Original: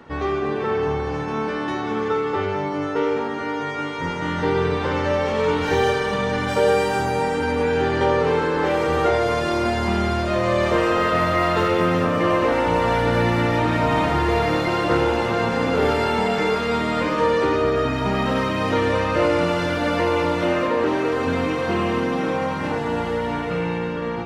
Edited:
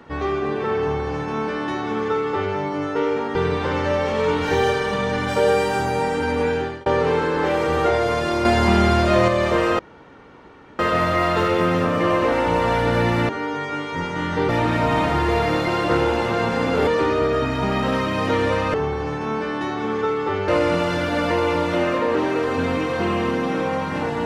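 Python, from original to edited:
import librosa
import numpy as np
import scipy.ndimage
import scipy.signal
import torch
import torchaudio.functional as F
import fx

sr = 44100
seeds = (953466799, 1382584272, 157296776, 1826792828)

y = fx.edit(x, sr, fx.duplicate(start_s=0.81, length_s=1.74, to_s=19.17),
    fx.move(start_s=3.35, length_s=1.2, to_s=13.49),
    fx.fade_out_span(start_s=7.68, length_s=0.38),
    fx.clip_gain(start_s=9.65, length_s=0.83, db=5.0),
    fx.insert_room_tone(at_s=10.99, length_s=1.0),
    fx.cut(start_s=15.87, length_s=1.43), tone=tone)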